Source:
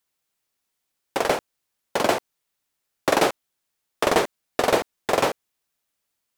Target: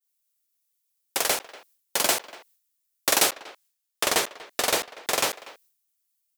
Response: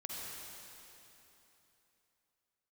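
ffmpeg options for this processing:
-filter_complex "[0:a]asplit=2[a][b];[b]adelay=240,highpass=300,lowpass=3.4k,asoftclip=type=hard:threshold=-13.5dB,volume=-17dB[c];[a][c]amix=inputs=2:normalize=0,crystalizer=i=10:c=0,agate=range=-33dB:threshold=-47dB:ratio=3:detection=peak,asettb=1/sr,asplit=3[d][e][f];[d]atrim=end=3.304[g];[e]atrim=start=3.3:end=5.31,asetpts=PTS-STARTPTS,afade=t=in:d=0.004:c=qsin,afade=t=out:st=2.006:d=0.004:c=qsin,highshelf=f=7.6k:g=-6[h];[f]atrim=start=5.306[i];[g][h]acrossfade=d=0.004:c1=hsin:c2=qsin[j];[j][i]acrossfade=d=0.004:c1=qsin:c2=hsin,volume=-10.5dB"

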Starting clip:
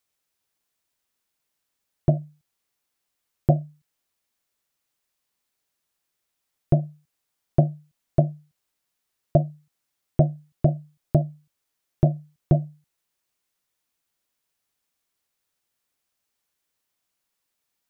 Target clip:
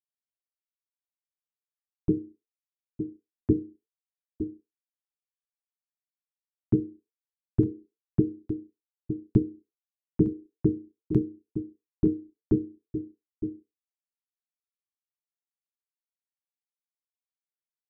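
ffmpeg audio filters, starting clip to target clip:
-filter_complex "[0:a]bandreject=f=60:t=h:w=6,bandreject=f=120:t=h:w=6,bandreject=f=180:t=h:w=6,bandreject=f=240:t=h:w=6,bandreject=f=300:t=h:w=6,bandreject=f=360:t=h:w=6,asplit=2[a][b];[b]aecho=0:1:910:0.251[c];[a][c]amix=inputs=2:normalize=0,anlmdn=0.00631,acrossover=split=120|270[d][e][f];[e]acompressor=threshold=-32dB:ratio=20[g];[d][g][f]amix=inputs=3:normalize=0,afreqshift=-460,agate=range=-33dB:threshold=-53dB:ratio=3:detection=peak"

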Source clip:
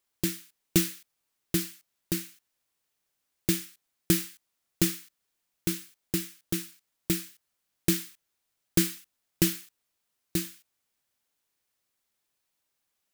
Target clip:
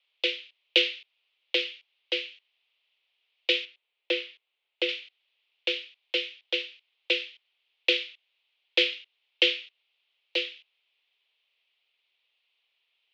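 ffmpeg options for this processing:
-filter_complex "[0:a]highpass=f=210:t=q:w=0.5412,highpass=f=210:t=q:w=1.307,lowpass=f=2.9k:t=q:w=0.5176,lowpass=f=2.9k:t=q:w=0.7071,lowpass=f=2.9k:t=q:w=1.932,afreqshift=170,acrossover=split=520|1100[a][b][c];[b]asoftclip=type=hard:threshold=-39dB[d];[c]aexciter=amount=12.3:drive=5:freq=2.4k[e];[a][d][e]amix=inputs=3:normalize=0,asettb=1/sr,asplit=3[f][g][h];[f]atrim=end=3.654[i];[g]atrim=start=3.65:end=4.89,asetpts=PTS-STARTPTS,afade=t=in:d=0.004:c=qsin,afade=t=out:st=1.236:d=0.004:c=qsin,highshelf=f=2.1k:g=-9.5[j];[h]atrim=start=4.886[k];[i][j]acrossfade=d=0.004:c1=hsin:c2=qsin[l];[l][k]acrossfade=d=0.004:c1=qsin:c2=hsin"

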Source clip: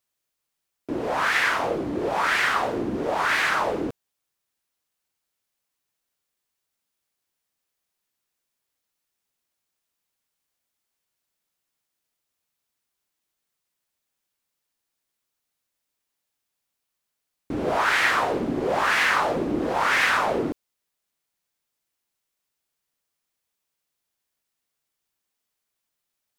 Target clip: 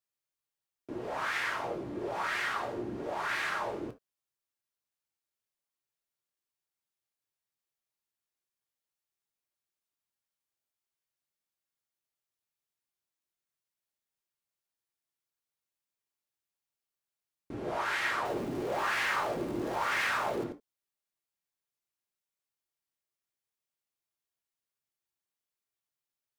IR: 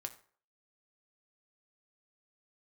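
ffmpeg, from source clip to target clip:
-filter_complex "[0:a]asettb=1/sr,asplit=3[a][b][c];[a]atrim=end=18.254[d];[b]atrim=start=18.25:end=20.44,asetpts=PTS-STARTPTS,afade=t=in:d=0.004:c=qsin,afade=t=out:st=2.186:d=0.004:c=qsin,aeval=exprs='val(0)+0.5*0.0316*sgn(val(0))':c=same[e];[c]atrim=start=20.436[f];[d][e]acrossfade=d=0.004:c1=hsin:c2=qsin[g];[g][f]acrossfade=d=0.004:c1=qsin:c2=hsin[h];[1:a]atrim=start_sample=2205,atrim=end_sample=3528[i];[h][i]afir=irnorm=-1:irlink=0,volume=-8dB"

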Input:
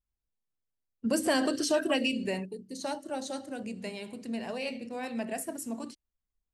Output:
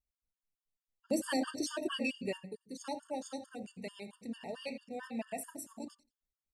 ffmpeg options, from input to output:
-af "aecho=1:1:89|178:0.133|0.0227,afftfilt=real='re*gt(sin(2*PI*4.5*pts/sr)*(1-2*mod(floor(b*sr/1024/910),2)),0)':imag='im*gt(sin(2*PI*4.5*pts/sr)*(1-2*mod(floor(b*sr/1024/910),2)),0)':win_size=1024:overlap=0.75,volume=-3.5dB"

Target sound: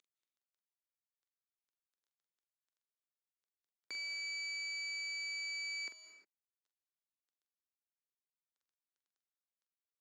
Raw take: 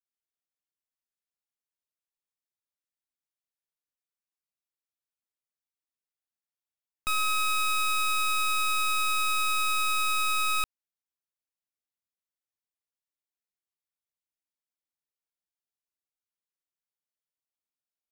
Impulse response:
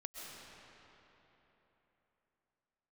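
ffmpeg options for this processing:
-filter_complex "[0:a]highshelf=f=4.2k:g=-10.5,acompressor=mode=upward:threshold=-32dB:ratio=2.5,aeval=exprs='(tanh(39.8*val(0)+0.7)-tanh(0.7))/39.8':c=same,acrusher=bits=8:mix=0:aa=0.000001,asetrate=79821,aresample=44100,highpass=f=310:w=0.5412,highpass=f=310:w=1.3066,equalizer=f=710:t=q:w=4:g=-5,equalizer=f=1.5k:t=q:w=4:g=4,equalizer=f=2.5k:t=q:w=4:g=-5,equalizer=f=3.7k:t=q:w=4:g=3,lowpass=f=7.3k:w=0.5412,lowpass=f=7.3k:w=1.3066,asplit=2[a][b];[1:a]atrim=start_sample=2205,afade=t=out:st=0.37:d=0.01,atrim=end_sample=16758,adelay=44[c];[b][c]afir=irnorm=-1:irlink=0,volume=-2.5dB[d];[a][d]amix=inputs=2:normalize=0,volume=-6dB"

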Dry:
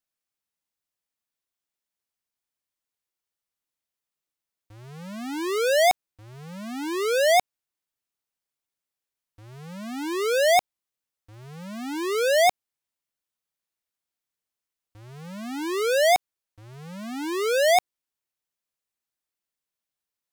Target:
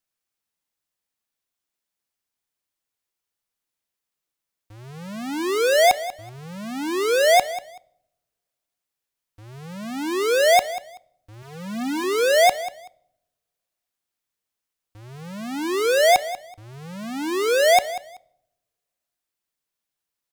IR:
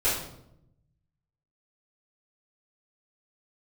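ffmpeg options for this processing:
-filter_complex "[0:a]asettb=1/sr,asplit=3[a][b][c];[a]atrim=end=11.424[d];[b]atrim=start=11.42:end=12.04,asetpts=PTS-STARTPTS,afade=t=in:d=0.004:c=qsin,afade=t=out:st=0.616:d=0.004:c=qsin,aecho=1:1:4.1:0.66,atrim=end_sample=27342[e];[c]atrim=start=12.036[f];[d][e]acrossfade=d=0.004:c1=hsin:c2=qsin[g];[g][f]acrossfade=d=0.004:c1=qsin:c2=hsin,aecho=1:1:190|380:0.178|0.0356,asplit=2[h][i];[1:a]atrim=start_sample=2205[j];[i][j]afir=irnorm=-1:irlink=0,volume=-30.5dB[k];[h][k]amix=inputs=2:normalize=0,volume=3dB"

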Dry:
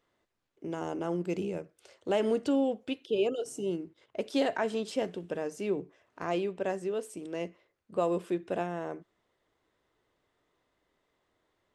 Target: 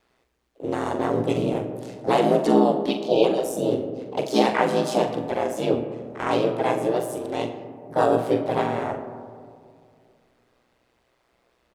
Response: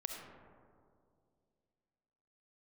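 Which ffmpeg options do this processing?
-filter_complex "[0:a]asplit=3[a][b][c];[b]asetrate=55563,aresample=44100,atempo=0.793701,volume=-1dB[d];[c]asetrate=66075,aresample=44100,atempo=0.66742,volume=-8dB[e];[a][d][e]amix=inputs=3:normalize=0,aeval=exprs='val(0)*sin(2*PI*61*n/s)':c=same,asplit=2[f][g];[g]adelay=42,volume=-8.5dB[h];[f][h]amix=inputs=2:normalize=0,asplit=2[i][j];[1:a]atrim=start_sample=2205[k];[j][k]afir=irnorm=-1:irlink=0,volume=0dB[l];[i][l]amix=inputs=2:normalize=0,volume=3.5dB"

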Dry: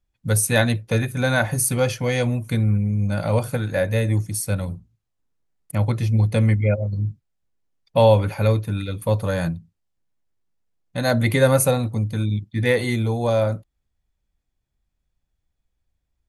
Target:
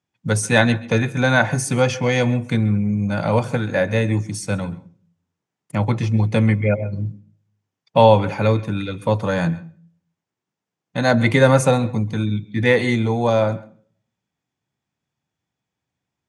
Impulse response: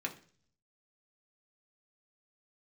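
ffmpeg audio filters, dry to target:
-filter_complex "[0:a]highpass=f=120:w=0.5412,highpass=f=120:w=1.3066,equalizer=f=560:t=q:w=4:g=-3,equalizer=f=900:t=q:w=4:g=3,equalizer=f=4.2k:t=q:w=4:g=-5,lowpass=f=7.3k:w=0.5412,lowpass=f=7.3k:w=1.3066,asplit=2[a][b];[1:a]atrim=start_sample=2205,adelay=132[c];[b][c]afir=irnorm=-1:irlink=0,volume=-20dB[d];[a][d]amix=inputs=2:normalize=0,volume=4.5dB"

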